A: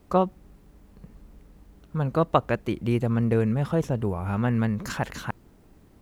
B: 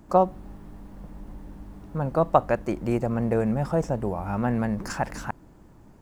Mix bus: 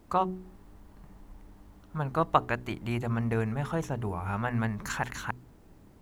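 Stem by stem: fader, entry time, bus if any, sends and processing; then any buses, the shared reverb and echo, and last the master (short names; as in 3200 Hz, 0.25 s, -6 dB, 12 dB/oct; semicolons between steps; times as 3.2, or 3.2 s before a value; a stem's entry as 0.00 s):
-2.5 dB, 0.00 s, no send, de-hum 61.64 Hz, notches 7
-8.5 dB, 0.00 s, polarity flipped, no send, dry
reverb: off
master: dry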